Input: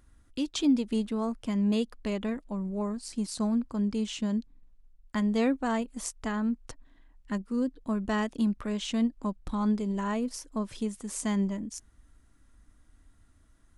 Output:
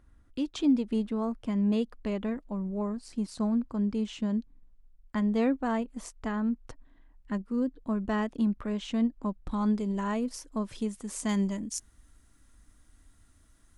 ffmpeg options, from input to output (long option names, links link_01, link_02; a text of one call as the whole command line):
ffmpeg -i in.wav -af "asetnsamples=nb_out_samples=441:pad=0,asendcmd='9.51 highshelf g -2.5;11.29 highshelf g 7.5',highshelf=frequency=3400:gain=-11" out.wav